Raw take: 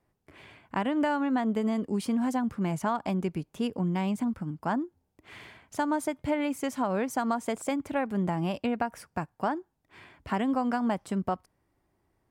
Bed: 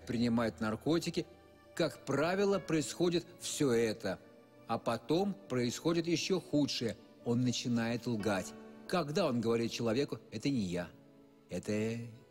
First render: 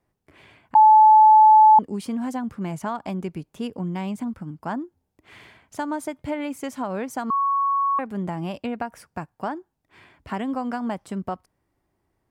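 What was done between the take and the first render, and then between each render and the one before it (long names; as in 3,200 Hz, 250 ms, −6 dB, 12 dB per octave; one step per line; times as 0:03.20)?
0:00.75–0:01.79: beep over 865 Hz −8.5 dBFS
0:07.30–0:07.99: beep over 1,110 Hz −18.5 dBFS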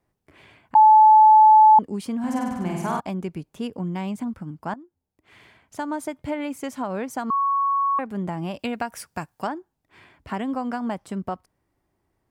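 0:02.19–0:03.00: flutter between parallel walls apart 8.5 metres, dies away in 1.2 s
0:04.74–0:06.02: fade in, from −15 dB
0:08.59–0:09.47: high-shelf EQ 2,400 Hz +11.5 dB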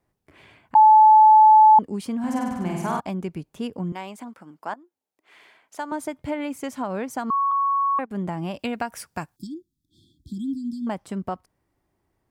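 0:03.92–0:05.92: high-pass filter 420 Hz
0:07.51–0:08.11: noise gate −30 dBFS, range −18 dB
0:09.36–0:10.87: linear-phase brick-wall band-stop 360–3,200 Hz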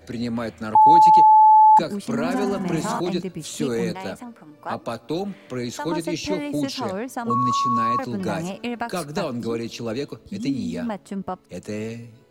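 mix in bed +5 dB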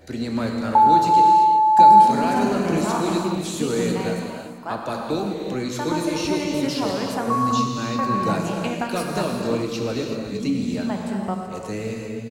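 single-tap delay 389 ms −15.5 dB
reverb whose tail is shaped and stops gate 390 ms flat, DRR 0.5 dB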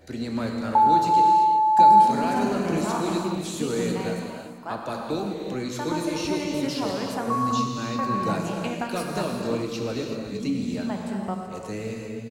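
level −3.5 dB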